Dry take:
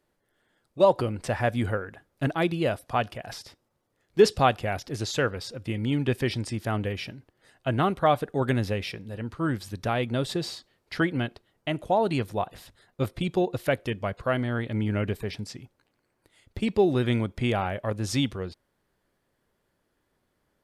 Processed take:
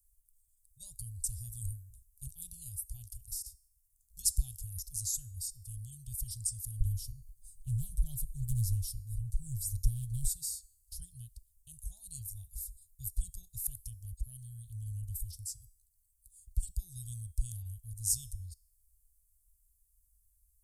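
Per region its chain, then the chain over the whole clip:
6.80–10.27 s: bass shelf 200 Hz +11 dB + comb 6.9 ms, depth 81% + loudspeaker Doppler distortion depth 0.34 ms
whole clip: inverse Chebyshev band-stop 230–2300 Hz, stop band 70 dB; de-hum 408.2 Hz, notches 36; trim +13.5 dB

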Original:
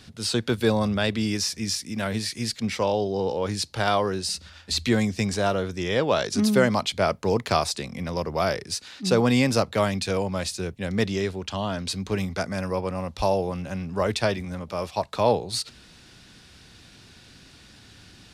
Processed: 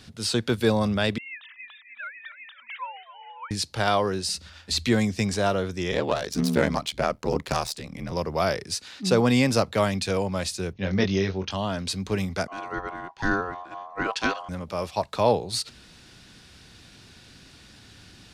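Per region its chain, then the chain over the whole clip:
1.18–3.51 s: formants replaced by sine waves + inverse Chebyshev high-pass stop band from 420 Hz, stop band 50 dB + modulated delay 268 ms, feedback 50%, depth 94 cents, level -14 dB
5.91–8.12 s: self-modulated delay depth 0.073 ms + ring modulator 38 Hz
10.73–11.51 s: brick-wall FIR low-pass 6.6 kHz + doubling 21 ms -4.5 dB
12.47–14.49 s: ring modulator 890 Hz + distance through air 85 m + three bands expanded up and down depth 70%
whole clip: none

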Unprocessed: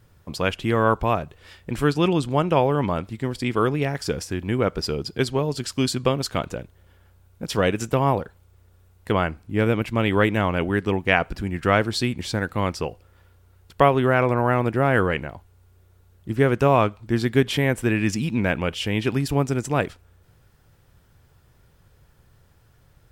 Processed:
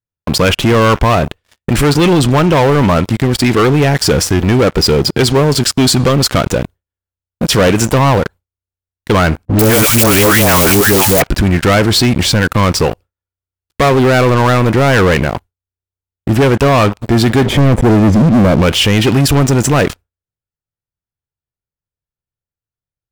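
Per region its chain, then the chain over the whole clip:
9.45–11.22 s: zero-crossing glitches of -14 dBFS + treble shelf 5.9 kHz +5 dB + phase dispersion highs, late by 143 ms, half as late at 740 Hz
17.46–18.62 s: waveshaping leveller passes 2 + boxcar filter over 32 samples
whole clip: waveshaping leveller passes 5; expander -24 dBFS; peak limiter -12 dBFS; trim +6.5 dB

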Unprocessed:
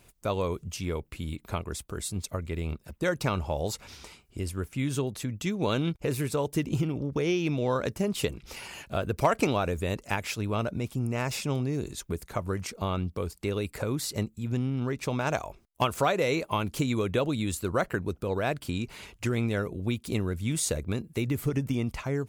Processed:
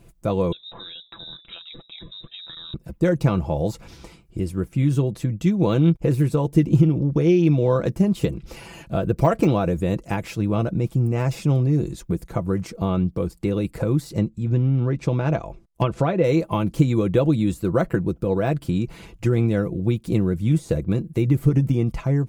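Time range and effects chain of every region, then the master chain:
0.52–2.74 s: hum notches 60/120/180/240/300/360/420 Hz + compression 5:1, threshold -34 dBFS + frequency inversion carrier 3.8 kHz
14.10–16.24 s: low-pass that closes with the level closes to 2.7 kHz, closed at -21.5 dBFS + dynamic bell 1 kHz, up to -3 dB, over -35 dBFS, Q 1.1
whole clip: tilt shelf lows +7 dB, about 690 Hz; de-esser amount 95%; comb 6 ms, depth 53%; trim +3.5 dB

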